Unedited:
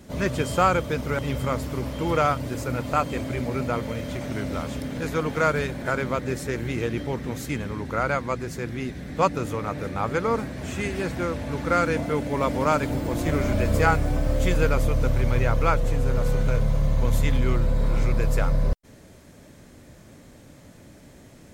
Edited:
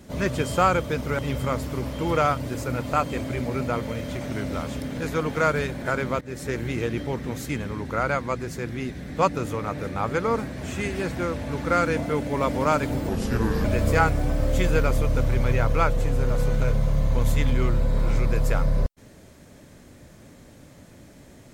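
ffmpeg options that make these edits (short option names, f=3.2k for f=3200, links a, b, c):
-filter_complex "[0:a]asplit=4[a][b][c][d];[a]atrim=end=6.21,asetpts=PTS-STARTPTS,afade=t=out:st=6.206:d=0.004:c=hsin:silence=0.133352[e];[b]atrim=start=6.21:end=13.094,asetpts=PTS-STARTPTS,afade=t=in:d=0.28:silence=0.133352[f];[c]atrim=start=13.09:end=13.51,asetpts=PTS-STARTPTS,asetrate=33516,aresample=44100,atrim=end_sample=24371,asetpts=PTS-STARTPTS[g];[d]atrim=start=13.506[h];[e][f]concat=n=2:v=0:a=1[i];[i][g]acrossfade=d=0.004:c1=hsin:c2=hsin[j];[j][h]acrossfade=d=0.004:c1=hsin:c2=hsin"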